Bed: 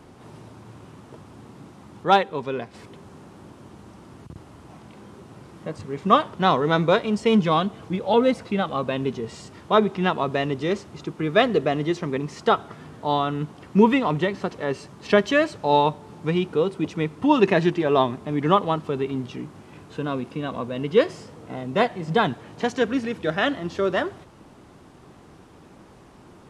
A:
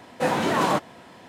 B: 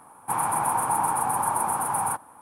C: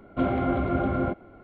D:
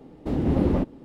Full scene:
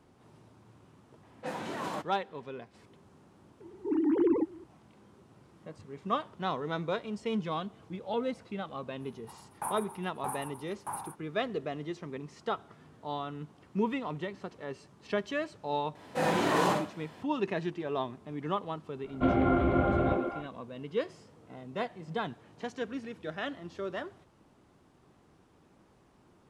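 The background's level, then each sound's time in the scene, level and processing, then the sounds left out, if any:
bed −14 dB
0:01.23: mix in A −14.5 dB + low-pass that shuts in the quiet parts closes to 2,800 Hz, open at −18.5 dBFS
0:03.60: mix in D −4.5 dB + three sine waves on the formant tracks
0:08.99: mix in B −7.5 dB, fades 0.05 s + tremolo with a ramp in dB decaying 1.6 Hz, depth 36 dB
0:15.95: mix in A −8 dB + four-comb reverb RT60 0.36 s, DRR −0.5 dB
0:19.04: mix in C −1.5 dB + echo through a band-pass that steps 123 ms, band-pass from 380 Hz, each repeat 1.4 octaves, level −0.5 dB

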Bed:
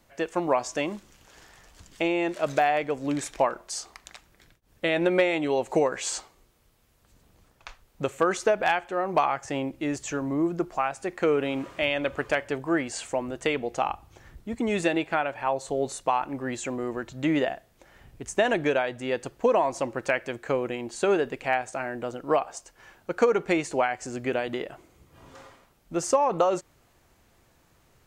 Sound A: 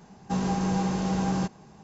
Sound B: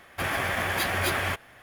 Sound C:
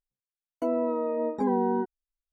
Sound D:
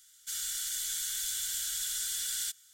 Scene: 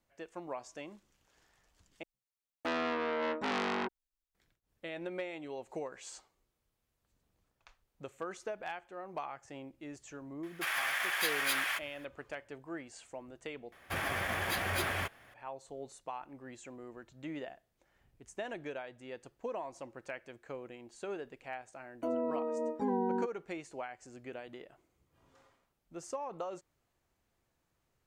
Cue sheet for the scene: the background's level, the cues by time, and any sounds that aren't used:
bed −17.5 dB
0:02.03: overwrite with C −1.5 dB + saturating transformer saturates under 2,600 Hz
0:10.43: mix in B −3 dB + high-pass filter 1,300 Hz
0:13.72: overwrite with B −7 dB
0:21.41: mix in C −7 dB
not used: A, D

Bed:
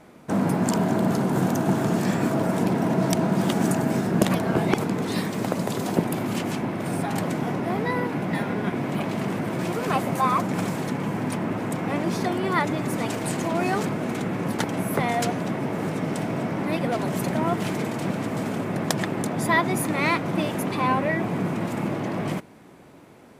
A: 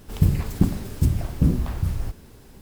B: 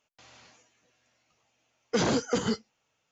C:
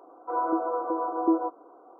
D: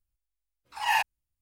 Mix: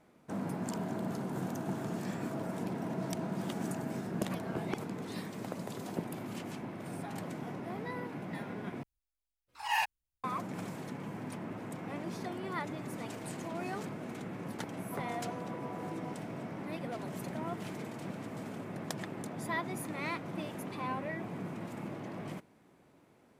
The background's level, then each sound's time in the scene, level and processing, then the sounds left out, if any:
bed −14.5 dB
0:08.83: overwrite with D −6 dB
0:14.64: mix in C −12.5 dB + downward compressor, threshold −28 dBFS
not used: A, B

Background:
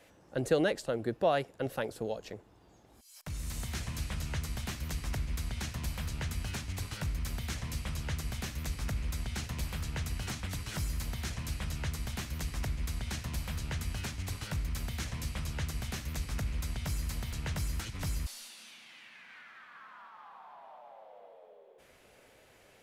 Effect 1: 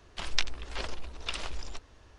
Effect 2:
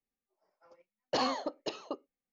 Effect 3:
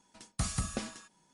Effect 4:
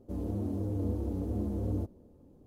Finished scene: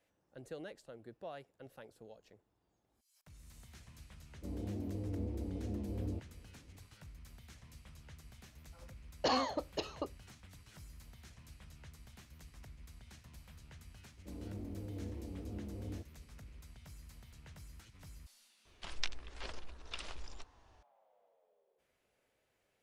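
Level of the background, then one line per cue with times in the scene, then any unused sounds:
background −19 dB
0:04.34: mix in 4 −7 dB + low-pass filter 1,100 Hz
0:08.11: mix in 2 −1.5 dB
0:14.17: mix in 4 −11.5 dB
0:18.65: mix in 1 −9.5 dB
not used: 3

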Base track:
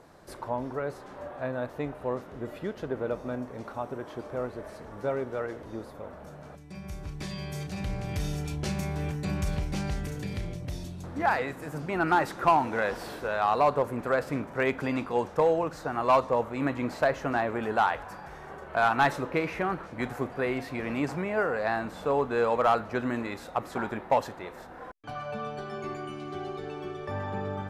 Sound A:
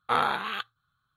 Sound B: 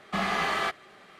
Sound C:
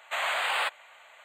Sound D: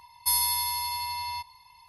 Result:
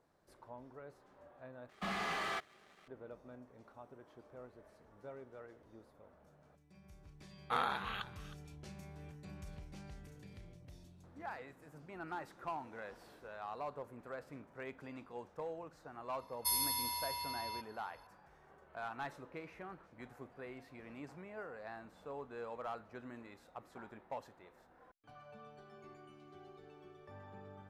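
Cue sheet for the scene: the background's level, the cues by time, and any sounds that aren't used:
base track −20 dB
0:01.69: overwrite with B −16 dB + leveller curve on the samples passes 2
0:07.41: mix in A −10 dB + single-tap delay 314 ms −16 dB
0:16.19: mix in D −9.5 dB
not used: C

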